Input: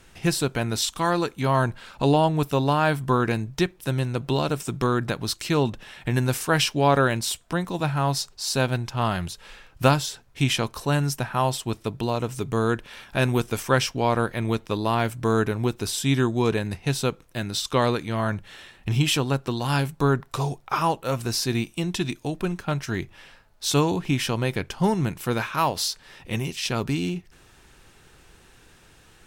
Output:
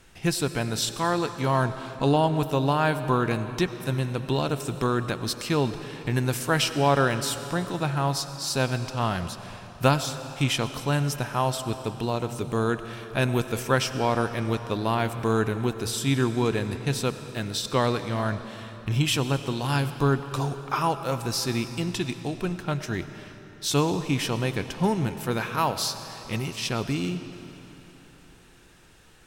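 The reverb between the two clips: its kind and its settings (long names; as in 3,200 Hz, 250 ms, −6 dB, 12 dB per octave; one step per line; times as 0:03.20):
comb and all-pass reverb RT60 3.6 s, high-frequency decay 0.9×, pre-delay 55 ms, DRR 10.5 dB
level −2 dB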